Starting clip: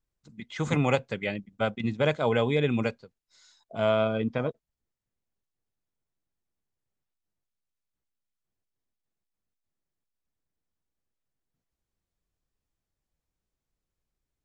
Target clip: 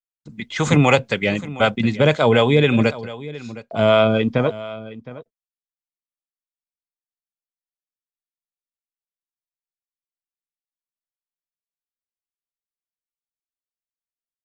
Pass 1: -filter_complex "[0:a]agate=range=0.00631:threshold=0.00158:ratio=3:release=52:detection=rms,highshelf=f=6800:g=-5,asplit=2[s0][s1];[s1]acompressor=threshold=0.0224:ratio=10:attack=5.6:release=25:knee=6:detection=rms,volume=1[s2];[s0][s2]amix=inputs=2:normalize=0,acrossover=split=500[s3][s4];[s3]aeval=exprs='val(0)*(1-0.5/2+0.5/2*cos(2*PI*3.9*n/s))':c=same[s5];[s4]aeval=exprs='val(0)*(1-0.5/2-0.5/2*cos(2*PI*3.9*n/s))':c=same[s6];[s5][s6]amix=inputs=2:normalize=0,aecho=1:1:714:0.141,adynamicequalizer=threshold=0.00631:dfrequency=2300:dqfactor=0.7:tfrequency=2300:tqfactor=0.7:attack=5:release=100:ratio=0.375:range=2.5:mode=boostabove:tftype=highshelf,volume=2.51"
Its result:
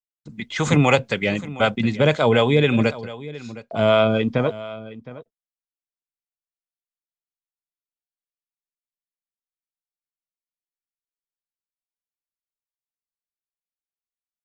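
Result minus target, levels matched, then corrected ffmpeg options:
compression: peak gain reduction +6.5 dB
-filter_complex "[0:a]agate=range=0.00631:threshold=0.00158:ratio=3:release=52:detection=rms,highshelf=f=6800:g=-5,asplit=2[s0][s1];[s1]acompressor=threshold=0.0531:ratio=10:attack=5.6:release=25:knee=6:detection=rms,volume=1[s2];[s0][s2]amix=inputs=2:normalize=0,acrossover=split=500[s3][s4];[s3]aeval=exprs='val(0)*(1-0.5/2+0.5/2*cos(2*PI*3.9*n/s))':c=same[s5];[s4]aeval=exprs='val(0)*(1-0.5/2-0.5/2*cos(2*PI*3.9*n/s))':c=same[s6];[s5][s6]amix=inputs=2:normalize=0,aecho=1:1:714:0.141,adynamicequalizer=threshold=0.00631:dfrequency=2300:dqfactor=0.7:tfrequency=2300:tqfactor=0.7:attack=5:release=100:ratio=0.375:range=2.5:mode=boostabove:tftype=highshelf,volume=2.51"

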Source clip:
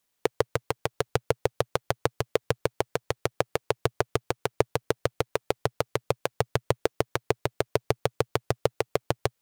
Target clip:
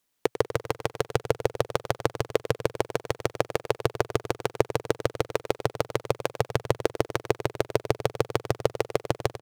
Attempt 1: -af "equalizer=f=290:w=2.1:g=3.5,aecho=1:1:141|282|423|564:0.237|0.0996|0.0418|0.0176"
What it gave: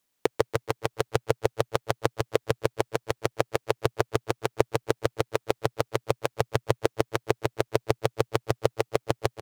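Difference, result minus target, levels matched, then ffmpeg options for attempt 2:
echo 44 ms late
-af "equalizer=f=290:w=2.1:g=3.5,aecho=1:1:97|194|291|388:0.237|0.0996|0.0418|0.0176"

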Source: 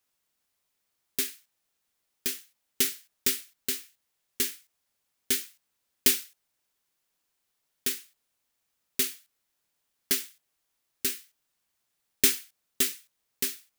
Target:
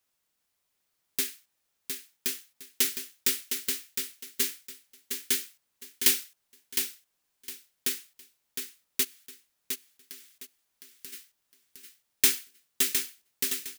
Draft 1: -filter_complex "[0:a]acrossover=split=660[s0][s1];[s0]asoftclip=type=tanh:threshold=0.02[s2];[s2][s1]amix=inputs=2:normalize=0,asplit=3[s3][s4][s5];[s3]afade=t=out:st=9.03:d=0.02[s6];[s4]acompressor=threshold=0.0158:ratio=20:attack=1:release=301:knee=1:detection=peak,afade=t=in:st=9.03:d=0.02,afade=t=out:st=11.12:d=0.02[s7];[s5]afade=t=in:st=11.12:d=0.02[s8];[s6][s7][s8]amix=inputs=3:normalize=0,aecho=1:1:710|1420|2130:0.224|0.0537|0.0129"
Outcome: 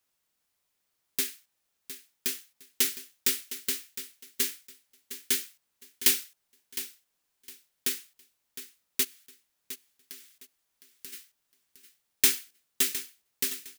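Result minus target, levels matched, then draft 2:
echo-to-direct -6.5 dB
-filter_complex "[0:a]acrossover=split=660[s0][s1];[s0]asoftclip=type=tanh:threshold=0.02[s2];[s2][s1]amix=inputs=2:normalize=0,asplit=3[s3][s4][s5];[s3]afade=t=out:st=9.03:d=0.02[s6];[s4]acompressor=threshold=0.0158:ratio=20:attack=1:release=301:knee=1:detection=peak,afade=t=in:st=9.03:d=0.02,afade=t=out:st=11.12:d=0.02[s7];[s5]afade=t=in:st=11.12:d=0.02[s8];[s6][s7][s8]amix=inputs=3:normalize=0,aecho=1:1:710|1420|2130:0.473|0.114|0.0273"

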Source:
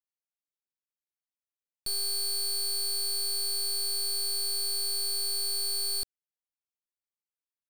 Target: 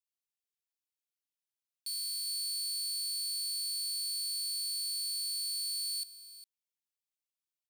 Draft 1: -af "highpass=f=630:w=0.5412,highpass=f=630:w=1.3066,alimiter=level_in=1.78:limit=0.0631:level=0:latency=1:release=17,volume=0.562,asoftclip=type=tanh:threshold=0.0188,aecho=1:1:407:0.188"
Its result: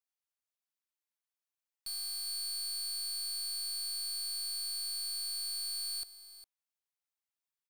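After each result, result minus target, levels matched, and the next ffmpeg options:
saturation: distortion +16 dB; 2 kHz band +6.5 dB
-af "highpass=f=630:w=0.5412,highpass=f=630:w=1.3066,alimiter=level_in=1.78:limit=0.0631:level=0:latency=1:release=17,volume=0.562,asoftclip=type=tanh:threshold=0.0596,aecho=1:1:407:0.188"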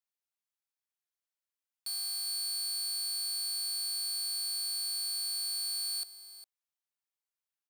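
2 kHz band +6.0 dB
-af "highpass=f=2300:w=0.5412,highpass=f=2300:w=1.3066,alimiter=level_in=1.78:limit=0.0631:level=0:latency=1:release=17,volume=0.562,asoftclip=type=tanh:threshold=0.0596,aecho=1:1:407:0.188"

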